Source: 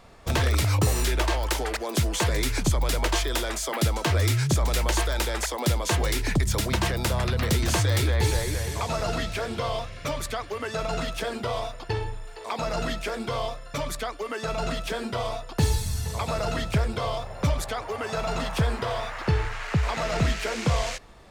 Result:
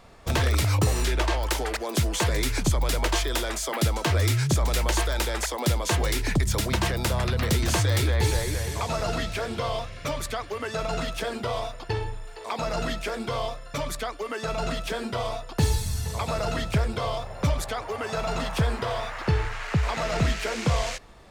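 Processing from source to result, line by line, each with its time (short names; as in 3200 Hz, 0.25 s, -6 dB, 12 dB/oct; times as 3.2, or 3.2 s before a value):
0.84–1.43 high shelf 11000 Hz -9.5 dB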